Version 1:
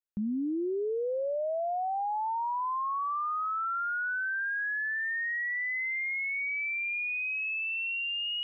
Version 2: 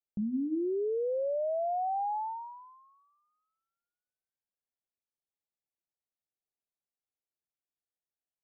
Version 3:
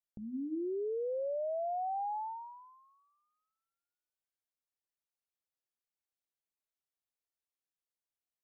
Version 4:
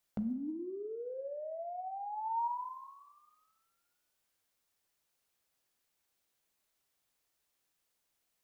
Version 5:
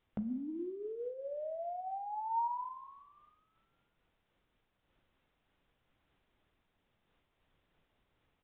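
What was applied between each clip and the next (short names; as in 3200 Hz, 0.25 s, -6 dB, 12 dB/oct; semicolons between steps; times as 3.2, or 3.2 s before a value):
steep low-pass 870 Hz 96 dB/oct; notches 60/120/180/240/300 Hz
bell 190 Hz -15 dB 0.39 oct; gain -4 dB
negative-ratio compressor -45 dBFS, ratio -1; wavefolder -33 dBFS; Schroeder reverb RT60 0.88 s, combs from 32 ms, DRR 10.5 dB; gain +5.5 dB
added noise pink -77 dBFS; downsampling 8000 Hz; noise-modulated level, depth 60%; gain +3 dB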